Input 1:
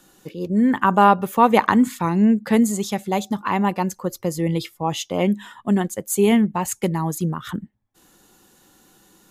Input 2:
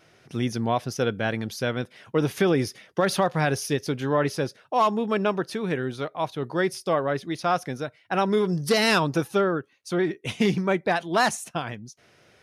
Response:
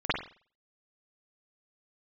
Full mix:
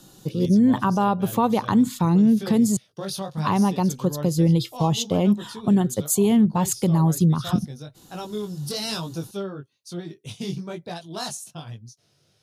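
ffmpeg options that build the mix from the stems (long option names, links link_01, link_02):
-filter_complex "[0:a]volume=2.5dB,asplit=3[link_01][link_02][link_03];[link_01]atrim=end=2.77,asetpts=PTS-STARTPTS,afade=type=out:start_time=2.766:duration=0.004:curve=hsin[link_04];[link_02]atrim=start=2.77:end=3.37,asetpts=PTS-STARTPTS,volume=0[link_05];[link_03]atrim=start=3.37,asetpts=PTS-STARTPTS,afade=type=in:duration=0.004:curve=hsin[link_06];[link_04][link_05][link_06]concat=n=3:v=0:a=1[link_07];[1:a]flanger=delay=17.5:depth=3.4:speed=1.1,highshelf=frequency=4400:gain=12,volume=-8.5dB[link_08];[link_07][link_08]amix=inputs=2:normalize=0,equalizer=frequency=125:width_type=o:width=1:gain=12,equalizer=frequency=2000:width_type=o:width=1:gain=-10,equalizer=frequency=4000:width_type=o:width=1:gain=6,alimiter=limit=-10.5dB:level=0:latency=1:release=242"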